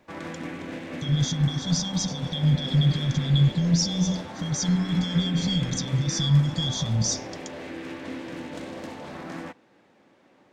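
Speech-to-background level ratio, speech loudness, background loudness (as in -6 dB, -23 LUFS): 12.0 dB, -24.5 LUFS, -36.5 LUFS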